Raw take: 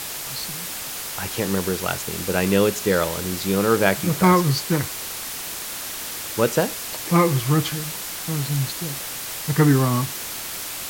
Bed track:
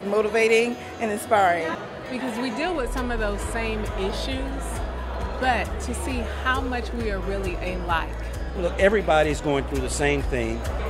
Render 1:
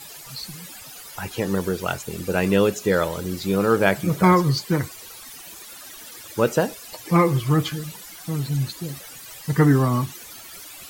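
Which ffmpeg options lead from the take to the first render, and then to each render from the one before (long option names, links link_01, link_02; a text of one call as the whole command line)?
ffmpeg -i in.wav -af "afftdn=noise_reduction=15:noise_floor=-32" out.wav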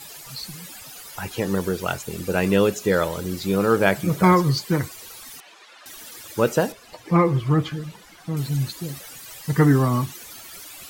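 ffmpeg -i in.wav -filter_complex "[0:a]asettb=1/sr,asplit=3[link_01][link_02][link_03];[link_01]atrim=end=5.404[link_04];[link_02]atrim=start=5.4:end=5.86,asetpts=PTS-STARTPTS,afade=type=in:duration=0.004:curve=qsin,afade=type=out:start_time=0.456:duration=0.004:curve=qsin,highpass=520,lowpass=3300[link_05];[link_03]atrim=start=5.856[link_06];[link_04][link_05]acrossfade=duration=0.004:curve1=hsin:curve2=qsin[link_07];[link_07][link_06]acrossfade=duration=0.004:curve1=qsin:curve2=hsin,asettb=1/sr,asplit=3[link_08][link_09][link_10];[link_08]atrim=end=6.724[link_11];[link_09]atrim=start=6.72:end=8.37,asetpts=PTS-STARTPTS,afade=type=in:duration=0.004:curve=qsin,afade=type=out:start_time=1.646:duration=0.004:curve=qsin,aemphasis=mode=reproduction:type=75kf[link_12];[link_10]atrim=start=8.366[link_13];[link_11][link_12]acrossfade=duration=0.004:curve1=hsin:curve2=qsin[link_14];[link_14][link_13]acrossfade=duration=0.004:curve1=qsin:curve2=hsin" out.wav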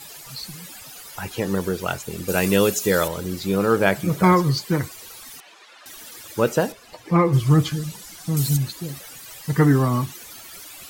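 ffmpeg -i in.wav -filter_complex "[0:a]asettb=1/sr,asplit=3[link_01][link_02][link_03];[link_01]atrim=end=2.284[link_04];[link_02]atrim=start=2.28:end=3.08,asetpts=PTS-STARTPTS,afade=type=in:duration=0.004:curve=qsin,afade=type=out:start_time=0.796:duration=0.004:curve=qsin,highshelf=frequency=4500:gain=12[link_05];[link_03]atrim=start=3.076[link_06];[link_04][link_05]acrossfade=duration=0.004:curve1=hsin:curve2=qsin[link_07];[link_07][link_06]acrossfade=duration=0.004:curve1=qsin:curve2=hsin,asplit=3[link_08][link_09][link_10];[link_08]afade=type=out:start_time=7.32:duration=0.02[link_11];[link_09]bass=frequency=250:gain=5,treble=frequency=4000:gain=14,afade=type=in:start_time=7.32:duration=0.02,afade=type=out:start_time=8.56:duration=0.02[link_12];[link_10]afade=type=in:start_time=8.56:duration=0.02[link_13];[link_11][link_12][link_13]amix=inputs=3:normalize=0" out.wav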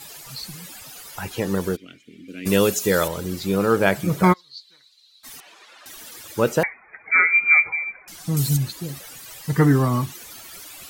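ffmpeg -i in.wav -filter_complex "[0:a]asplit=3[link_01][link_02][link_03];[link_01]afade=type=out:start_time=1.75:duration=0.02[link_04];[link_02]asplit=3[link_05][link_06][link_07];[link_05]bandpass=frequency=270:width_type=q:width=8,volume=0dB[link_08];[link_06]bandpass=frequency=2290:width_type=q:width=8,volume=-6dB[link_09];[link_07]bandpass=frequency=3010:width_type=q:width=8,volume=-9dB[link_10];[link_08][link_09][link_10]amix=inputs=3:normalize=0,afade=type=in:start_time=1.75:duration=0.02,afade=type=out:start_time=2.45:duration=0.02[link_11];[link_03]afade=type=in:start_time=2.45:duration=0.02[link_12];[link_04][link_11][link_12]amix=inputs=3:normalize=0,asplit=3[link_13][link_14][link_15];[link_13]afade=type=out:start_time=4.32:duration=0.02[link_16];[link_14]bandpass=frequency=4000:width_type=q:width=13,afade=type=in:start_time=4.32:duration=0.02,afade=type=out:start_time=5.23:duration=0.02[link_17];[link_15]afade=type=in:start_time=5.23:duration=0.02[link_18];[link_16][link_17][link_18]amix=inputs=3:normalize=0,asettb=1/sr,asplit=3[link_19][link_20][link_21];[link_19]atrim=end=6.634[link_22];[link_20]atrim=start=6.63:end=8.08,asetpts=PTS-STARTPTS,afade=type=in:duration=0.004:curve=qsin,afade=type=out:start_time=1.446:duration=0.004:curve=qsin,lowpass=frequency=2100:width_type=q:width=0.5098,lowpass=frequency=2100:width_type=q:width=0.6013,lowpass=frequency=2100:width_type=q:width=0.9,lowpass=frequency=2100:width_type=q:width=2.563,afreqshift=-2500[link_23];[link_21]atrim=start=8.076[link_24];[link_22][link_23]acrossfade=duration=0.004:curve1=hsin:curve2=qsin[link_25];[link_25][link_24]acrossfade=duration=0.004:curve1=qsin:curve2=hsin" out.wav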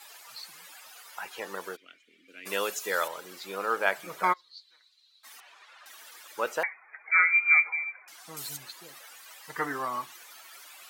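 ffmpeg -i in.wav -af "highpass=970,highshelf=frequency=2500:gain=-11.5" out.wav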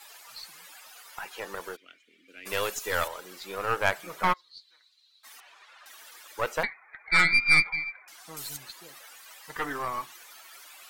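ffmpeg -i in.wav -af "aeval=exprs='0.398*(cos(1*acos(clip(val(0)/0.398,-1,1)))-cos(1*PI/2))+0.0501*(cos(6*acos(clip(val(0)/0.398,-1,1)))-cos(6*PI/2))':channel_layout=same" out.wav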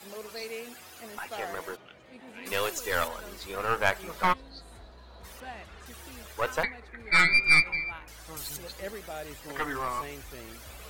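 ffmpeg -i in.wav -i bed.wav -filter_complex "[1:a]volume=-20.5dB[link_01];[0:a][link_01]amix=inputs=2:normalize=0" out.wav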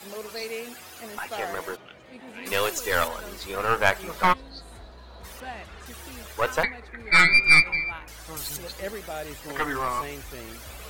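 ffmpeg -i in.wav -af "volume=4.5dB" out.wav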